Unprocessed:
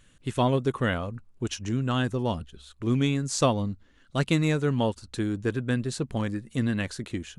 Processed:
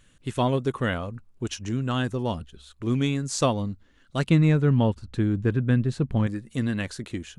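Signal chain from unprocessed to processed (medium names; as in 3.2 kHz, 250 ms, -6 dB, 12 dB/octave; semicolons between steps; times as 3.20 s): 4.29–6.27 s: tone controls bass +8 dB, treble -11 dB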